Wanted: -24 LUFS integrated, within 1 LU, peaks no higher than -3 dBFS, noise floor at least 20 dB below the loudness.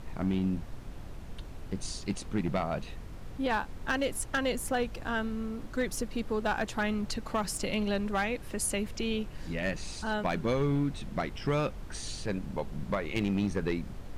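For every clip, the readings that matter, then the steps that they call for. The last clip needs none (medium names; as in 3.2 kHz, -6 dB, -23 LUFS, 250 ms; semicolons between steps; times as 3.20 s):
clipped samples 0.8%; clipping level -22.0 dBFS; noise floor -44 dBFS; noise floor target -53 dBFS; loudness -32.5 LUFS; peak level -22.0 dBFS; loudness target -24.0 LUFS
-> clip repair -22 dBFS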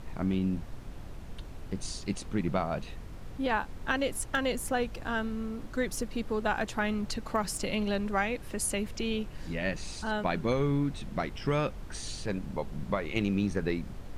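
clipped samples 0.0%; noise floor -44 dBFS; noise floor target -53 dBFS
-> noise print and reduce 9 dB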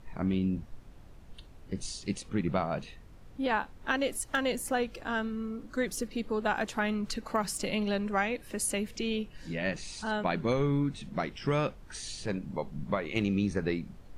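noise floor -51 dBFS; noise floor target -53 dBFS
-> noise print and reduce 6 dB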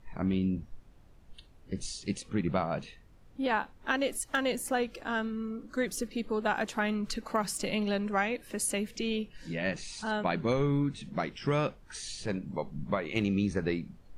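noise floor -56 dBFS; loudness -32.5 LUFS; peak level -14.0 dBFS; loudness target -24.0 LUFS
-> trim +8.5 dB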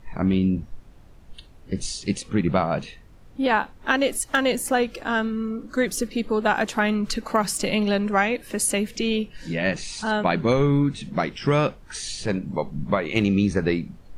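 loudness -24.0 LUFS; peak level -5.5 dBFS; noise floor -48 dBFS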